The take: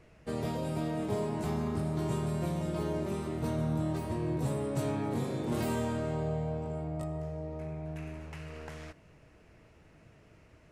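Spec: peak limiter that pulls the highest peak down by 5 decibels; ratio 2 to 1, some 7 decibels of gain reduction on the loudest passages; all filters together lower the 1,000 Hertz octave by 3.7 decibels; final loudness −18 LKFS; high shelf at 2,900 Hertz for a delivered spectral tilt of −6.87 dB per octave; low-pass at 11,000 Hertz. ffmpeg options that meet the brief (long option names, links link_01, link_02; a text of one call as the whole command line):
ffmpeg -i in.wav -af "lowpass=11000,equalizer=frequency=1000:width_type=o:gain=-5.5,highshelf=frequency=2900:gain=6.5,acompressor=threshold=-41dB:ratio=2,volume=24dB,alimiter=limit=-8.5dB:level=0:latency=1" out.wav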